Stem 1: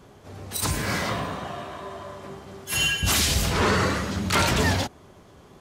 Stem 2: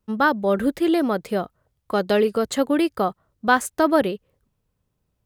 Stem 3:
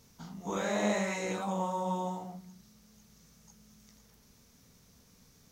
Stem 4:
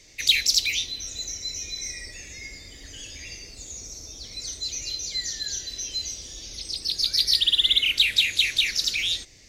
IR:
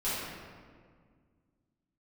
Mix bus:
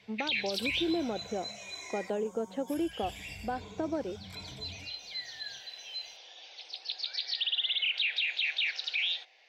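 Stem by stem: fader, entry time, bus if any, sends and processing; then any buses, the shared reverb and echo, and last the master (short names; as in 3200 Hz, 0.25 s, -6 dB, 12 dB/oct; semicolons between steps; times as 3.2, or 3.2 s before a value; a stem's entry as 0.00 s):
-17.0 dB, 0.00 s, bus A, no send, ripple EQ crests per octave 1.7, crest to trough 16 dB
-14.5 dB, 0.00 s, bus B, no send, compressor, threshold -19 dBFS, peak gain reduction 8 dB
-16.0 dB, 0.65 s, bus A, no send, resonant high shelf 4200 Hz +13 dB, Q 1.5
+1.0 dB, 0.00 s, muted 2.1–2.91, bus B, no send, HPF 770 Hz 24 dB/oct
bus A: 0.0 dB, envelope flanger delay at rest 9.8 ms, full sweep at -32 dBFS; compressor 6:1, threshold -47 dBFS, peak gain reduction 14 dB
bus B: 0.0 dB, speaker cabinet 200–3100 Hz, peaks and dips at 230 Hz +5 dB, 330 Hz +6 dB, 490 Hz +6 dB, 760 Hz +9 dB, 1200 Hz -8 dB, 2000 Hz -6 dB; limiter -22.5 dBFS, peak gain reduction 10.5 dB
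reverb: off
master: low shelf 140 Hz +4 dB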